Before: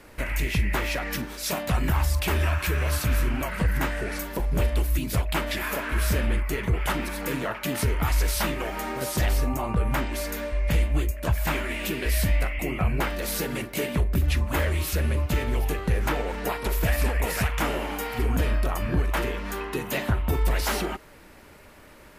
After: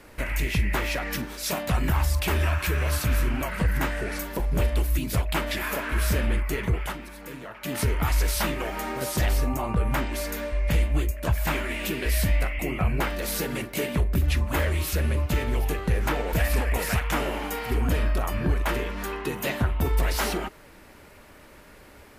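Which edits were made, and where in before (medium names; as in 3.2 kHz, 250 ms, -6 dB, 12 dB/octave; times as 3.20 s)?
6.70–7.81 s: dip -10.5 dB, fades 0.28 s
16.33–16.81 s: delete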